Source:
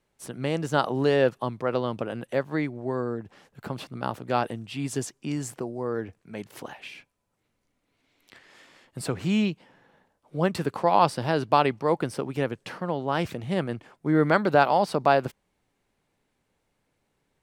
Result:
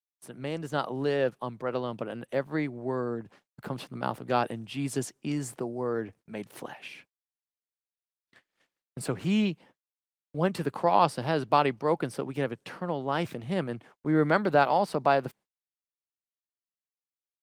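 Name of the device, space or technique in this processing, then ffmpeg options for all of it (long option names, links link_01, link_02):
video call: -af "highpass=frequency=110:width=0.5412,highpass=frequency=110:width=1.3066,dynaudnorm=framelen=410:gausssize=11:maxgain=6dB,agate=range=-50dB:threshold=-45dB:ratio=16:detection=peak,volume=-6dB" -ar 48000 -c:a libopus -b:a 24k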